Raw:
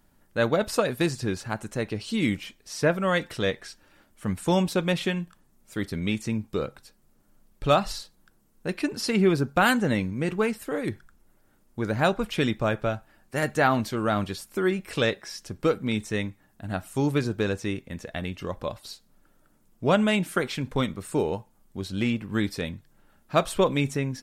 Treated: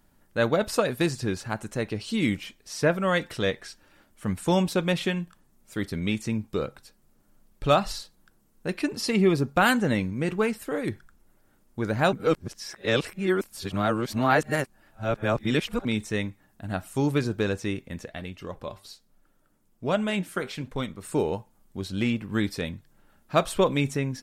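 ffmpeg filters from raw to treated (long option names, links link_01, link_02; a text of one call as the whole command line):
ffmpeg -i in.wav -filter_complex "[0:a]asettb=1/sr,asplit=3[link_01][link_02][link_03];[link_01]atrim=end=8.934[link_04];[link_02]atrim=start=8.93:end=9.56,asetpts=PTS-STARTPTS,afade=type=in:duration=0.004:curve=qsin,afade=type=out:start_time=0.626:duration=0.004:curve=qsin,asuperstop=centerf=1500:order=4:qfactor=7[link_05];[link_03]atrim=start=9.556[link_06];[link_04][link_05]acrossfade=duration=0.004:curve1=hsin:curve2=qsin[link_07];[link_07][link_06]acrossfade=duration=0.004:curve1=qsin:curve2=hsin,asplit=3[link_08][link_09][link_10];[link_08]afade=type=out:start_time=18.05:duration=0.02[link_11];[link_09]flanger=delay=1.3:depth=9.3:regen=80:speed=1.2:shape=sinusoidal,afade=type=in:start_time=18.05:duration=0.02,afade=type=out:start_time=21.02:duration=0.02[link_12];[link_10]afade=type=in:start_time=21.02:duration=0.02[link_13];[link_11][link_12][link_13]amix=inputs=3:normalize=0,asplit=3[link_14][link_15][link_16];[link_14]atrim=end=12.132[link_17];[link_15]atrim=start=12.128:end=15.852,asetpts=PTS-STARTPTS,areverse[link_18];[link_16]atrim=start=15.848[link_19];[link_17][link_18]acrossfade=duration=0.004:curve1=hsin:curve2=hsin[link_20];[link_20][link_19]acrossfade=duration=0.004:curve1=hsin:curve2=hsin" out.wav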